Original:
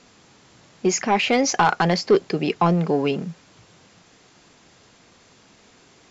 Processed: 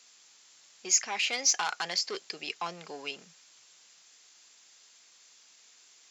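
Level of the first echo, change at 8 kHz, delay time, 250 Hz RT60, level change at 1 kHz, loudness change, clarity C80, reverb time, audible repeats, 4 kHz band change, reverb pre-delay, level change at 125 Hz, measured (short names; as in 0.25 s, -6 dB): none, n/a, none, none, -15.5 dB, -9.0 dB, none, none, none, -2.5 dB, none, -31.5 dB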